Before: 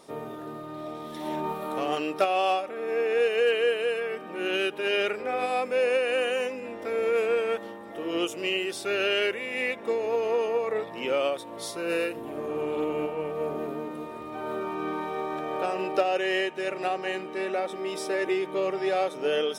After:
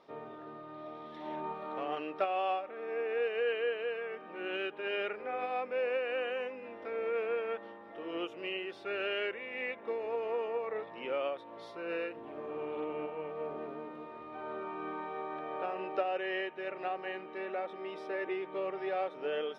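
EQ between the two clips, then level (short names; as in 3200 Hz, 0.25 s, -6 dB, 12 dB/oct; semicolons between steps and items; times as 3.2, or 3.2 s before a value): low shelf 400 Hz -9.5 dB; dynamic EQ 5300 Hz, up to -5 dB, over -47 dBFS, Q 0.83; air absorption 290 m; -4.0 dB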